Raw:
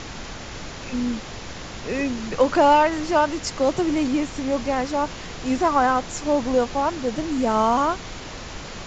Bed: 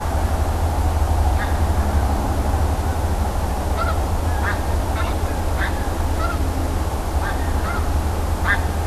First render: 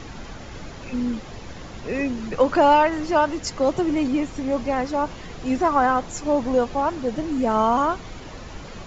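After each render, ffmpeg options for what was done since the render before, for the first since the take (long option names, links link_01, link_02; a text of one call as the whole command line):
ffmpeg -i in.wav -af "afftdn=noise_reduction=8:noise_floor=-36" out.wav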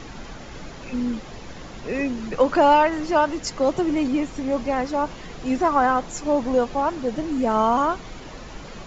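ffmpeg -i in.wav -af "equalizer=frequency=87:width=2.8:gain=-8.5" out.wav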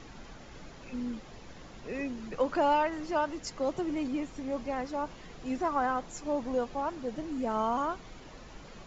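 ffmpeg -i in.wav -af "volume=-10.5dB" out.wav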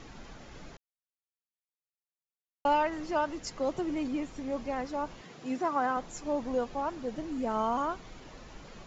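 ffmpeg -i in.wav -filter_complex "[0:a]asettb=1/sr,asplit=3[link_01][link_02][link_03];[link_01]atrim=end=5.214[link_04];[link_02]atrim=start=5.21:end=5.97,asetpts=PTS-STARTPTS,afade=type=in:duration=0.004:curve=qsin,afade=type=out:start_time=0.756:duration=0.004:curve=qsin,highpass=frequency=120:width=0.5412,highpass=frequency=120:width=1.3066[link_05];[link_03]atrim=start=5.966[link_06];[link_04][link_05]acrossfade=duration=0.004:curve1=hsin:curve2=qsin[link_07];[link_07][link_06]acrossfade=duration=0.004:curve1=qsin:curve2=hsin,asplit=3[link_08][link_09][link_10];[link_08]atrim=end=0.77,asetpts=PTS-STARTPTS,afade=type=out:start_time=0.766:duration=0.004:curve=hsin[link_11];[link_09]atrim=start=0.77:end=2.65,asetpts=PTS-STARTPTS,volume=0[link_12];[link_10]atrim=start=2.65,asetpts=PTS-STARTPTS,afade=type=in:duration=0.004:curve=hsin[link_13];[link_11][link_12][link_13]concat=n=3:v=0:a=1" out.wav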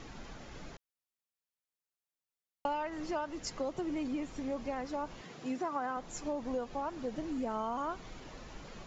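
ffmpeg -i in.wav -af "acompressor=threshold=-33dB:ratio=4" out.wav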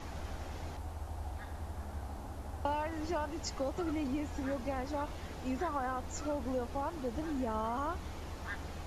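ffmpeg -i in.wav -i bed.wav -filter_complex "[1:a]volume=-23.5dB[link_01];[0:a][link_01]amix=inputs=2:normalize=0" out.wav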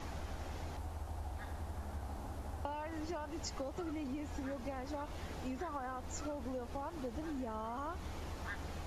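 ffmpeg -i in.wav -af "acompressor=threshold=-38dB:ratio=6" out.wav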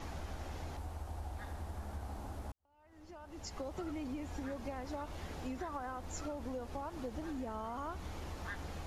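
ffmpeg -i in.wav -filter_complex "[0:a]asplit=2[link_01][link_02];[link_01]atrim=end=2.52,asetpts=PTS-STARTPTS,afade=type=out:start_time=2.516:duration=0.004:curve=hsin[link_03];[link_02]atrim=start=2.52,asetpts=PTS-STARTPTS,afade=type=in:duration=1.16:curve=qua[link_04];[link_03][link_04]concat=n=2:v=0:a=1" out.wav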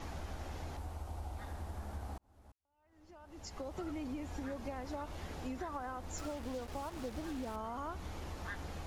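ffmpeg -i in.wav -filter_complex "[0:a]asettb=1/sr,asplit=3[link_01][link_02][link_03];[link_01]atrim=end=0.944[link_04];[link_02]atrim=start=0.94:end=1.48,asetpts=PTS-STARTPTS,afade=type=in:duration=0.004:curve=qsin,afade=type=out:start_time=0.536:duration=0.004:curve=qsin,bandreject=frequency=1700:width=9.4[link_05];[link_03]atrim=start=1.476[link_06];[link_04][link_05]acrossfade=duration=0.004:curve1=hsin:curve2=qsin[link_07];[link_07][link_06]acrossfade=duration=0.004:curve1=qsin:curve2=hsin,asettb=1/sr,asplit=3[link_08][link_09][link_10];[link_08]atrim=end=6.184[link_11];[link_09]atrim=start=6.18:end=7.56,asetpts=PTS-STARTPTS,afade=type=in:duration=0.004:curve=qsin,afade=type=out:start_time=1.376:duration=0.004:curve=qsin,acrusher=bits=7:mix=0:aa=0.5[link_12];[link_10]atrim=start=7.556[link_13];[link_11][link_12]acrossfade=duration=0.004:curve1=hsin:curve2=qsin[link_14];[link_14][link_13]acrossfade=duration=0.004:curve1=qsin:curve2=hsin,asplit=2[link_15][link_16];[link_15]atrim=end=2.18,asetpts=PTS-STARTPTS,afade=type=out:start_time=2.176:duration=0.004:curve=hsin[link_17];[link_16]atrim=start=2.18,asetpts=PTS-STARTPTS,afade=type=in:duration=1.66[link_18];[link_17][link_18]concat=n=2:v=0:a=1" out.wav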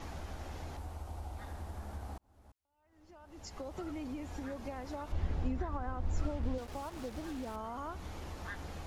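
ffmpeg -i in.wav -filter_complex "[0:a]asettb=1/sr,asplit=3[link_01][link_02][link_03];[link_01]atrim=end=5.124[link_04];[link_02]atrim=start=5.12:end=6.58,asetpts=PTS-STARTPTS,afade=type=in:duration=0.004:curve=qsin,afade=type=out:start_time=1.456:duration=0.004:curve=qsin,aemphasis=mode=reproduction:type=bsi[link_05];[link_03]atrim=start=6.576[link_06];[link_04][link_05]acrossfade=duration=0.004:curve1=hsin:curve2=qsin[link_07];[link_07][link_06]acrossfade=duration=0.004:curve1=qsin:curve2=hsin" out.wav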